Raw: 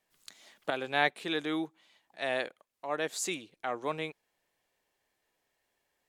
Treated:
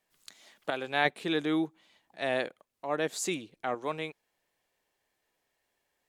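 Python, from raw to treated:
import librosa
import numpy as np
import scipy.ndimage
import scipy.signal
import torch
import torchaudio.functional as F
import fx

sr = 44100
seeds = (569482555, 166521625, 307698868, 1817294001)

y = fx.low_shelf(x, sr, hz=420.0, db=7.5, at=(1.05, 3.75))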